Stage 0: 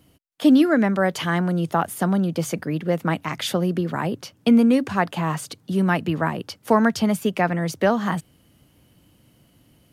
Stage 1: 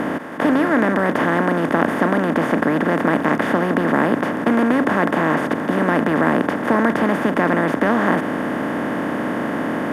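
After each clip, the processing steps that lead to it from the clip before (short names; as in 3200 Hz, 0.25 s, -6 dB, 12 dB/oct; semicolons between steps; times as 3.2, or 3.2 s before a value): per-bin compression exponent 0.2; resonant high shelf 2900 Hz -11.5 dB, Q 1.5; gain -6.5 dB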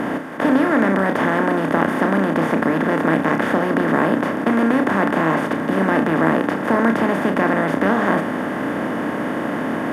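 flutter echo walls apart 5.3 m, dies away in 0.24 s; gain -1 dB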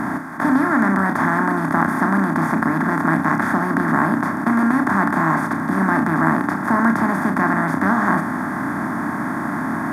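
fixed phaser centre 1200 Hz, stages 4; gain +3.5 dB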